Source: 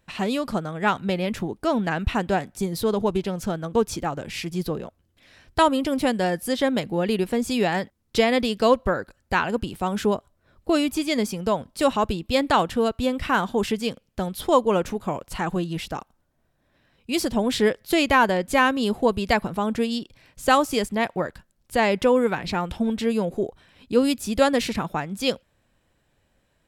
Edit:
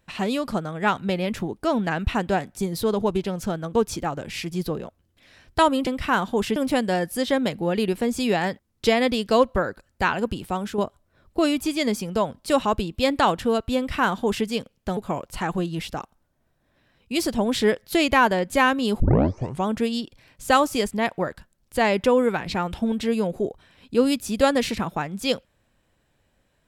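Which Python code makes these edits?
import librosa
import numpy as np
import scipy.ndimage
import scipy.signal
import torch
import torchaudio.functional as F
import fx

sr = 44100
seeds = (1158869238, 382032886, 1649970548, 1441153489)

y = fx.edit(x, sr, fx.fade_out_to(start_s=9.79, length_s=0.3, floor_db=-8.5),
    fx.duplicate(start_s=13.08, length_s=0.69, to_s=5.87),
    fx.cut(start_s=14.28, length_s=0.67),
    fx.tape_start(start_s=18.98, length_s=0.67), tone=tone)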